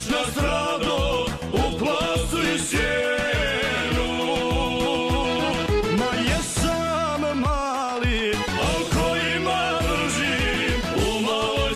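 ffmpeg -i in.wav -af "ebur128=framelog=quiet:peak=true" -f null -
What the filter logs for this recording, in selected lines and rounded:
Integrated loudness:
  I:         -22.6 LUFS
  Threshold: -32.6 LUFS
Loudness range:
  LRA:         0.7 LU
  Threshold: -42.6 LUFS
  LRA low:   -23.0 LUFS
  LRA high:  -22.2 LUFS
True peak:
  Peak:      -12.0 dBFS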